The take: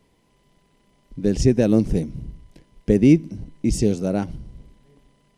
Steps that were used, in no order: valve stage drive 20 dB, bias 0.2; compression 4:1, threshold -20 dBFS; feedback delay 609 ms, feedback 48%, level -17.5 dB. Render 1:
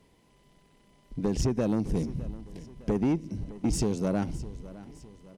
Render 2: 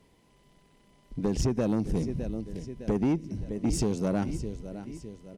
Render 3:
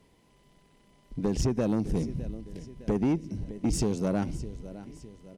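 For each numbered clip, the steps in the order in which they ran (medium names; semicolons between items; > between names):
compression > valve stage > feedback delay; feedback delay > compression > valve stage; compression > feedback delay > valve stage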